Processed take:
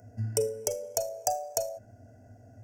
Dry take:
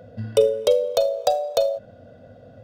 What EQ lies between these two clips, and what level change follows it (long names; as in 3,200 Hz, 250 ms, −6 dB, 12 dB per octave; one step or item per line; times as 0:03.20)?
parametric band 120 Hz +14.5 dB 0.86 octaves
high shelf with overshoot 4,500 Hz +10.5 dB, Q 3
phaser with its sweep stopped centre 780 Hz, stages 8
−6.0 dB